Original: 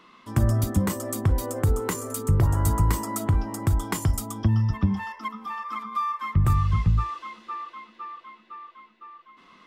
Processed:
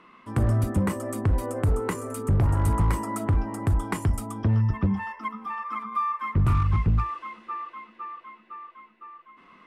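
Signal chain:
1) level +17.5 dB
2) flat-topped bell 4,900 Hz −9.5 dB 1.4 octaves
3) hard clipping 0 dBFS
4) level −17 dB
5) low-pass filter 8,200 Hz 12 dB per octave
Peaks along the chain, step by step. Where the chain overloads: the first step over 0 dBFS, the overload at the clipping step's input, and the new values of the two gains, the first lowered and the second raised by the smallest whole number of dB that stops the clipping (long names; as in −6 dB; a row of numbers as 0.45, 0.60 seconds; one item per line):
+7.5, +7.5, 0.0, −17.0, −16.5 dBFS
step 1, 7.5 dB
step 1 +9.5 dB, step 4 −9 dB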